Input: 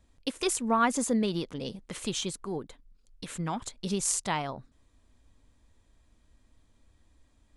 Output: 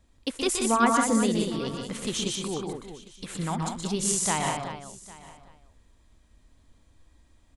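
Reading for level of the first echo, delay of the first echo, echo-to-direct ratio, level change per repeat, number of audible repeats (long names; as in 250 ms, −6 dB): −5.0 dB, 123 ms, −1.0 dB, repeats not evenly spaced, 7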